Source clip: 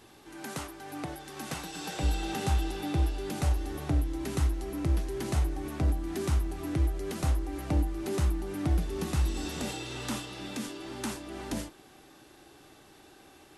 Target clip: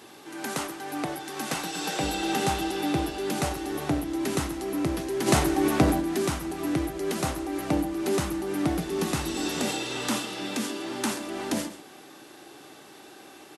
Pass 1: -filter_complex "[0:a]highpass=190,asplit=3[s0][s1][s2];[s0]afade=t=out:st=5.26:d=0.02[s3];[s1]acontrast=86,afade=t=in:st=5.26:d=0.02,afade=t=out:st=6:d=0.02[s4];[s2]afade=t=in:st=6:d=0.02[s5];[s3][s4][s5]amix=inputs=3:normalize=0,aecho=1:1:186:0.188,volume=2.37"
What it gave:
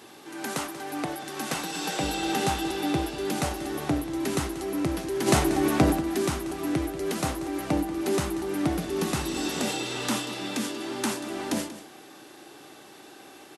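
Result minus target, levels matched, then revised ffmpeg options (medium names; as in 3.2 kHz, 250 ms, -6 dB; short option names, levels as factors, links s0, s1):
echo 52 ms late
-filter_complex "[0:a]highpass=190,asplit=3[s0][s1][s2];[s0]afade=t=out:st=5.26:d=0.02[s3];[s1]acontrast=86,afade=t=in:st=5.26:d=0.02,afade=t=out:st=6:d=0.02[s4];[s2]afade=t=in:st=6:d=0.02[s5];[s3][s4][s5]amix=inputs=3:normalize=0,aecho=1:1:134:0.188,volume=2.37"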